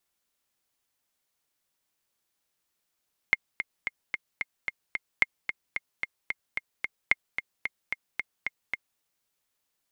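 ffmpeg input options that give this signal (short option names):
-f lavfi -i "aevalsrc='pow(10,(-6.5-9.5*gte(mod(t,7*60/222),60/222))/20)*sin(2*PI*2130*mod(t,60/222))*exp(-6.91*mod(t,60/222)/0.03)':d=5.67:s=44100"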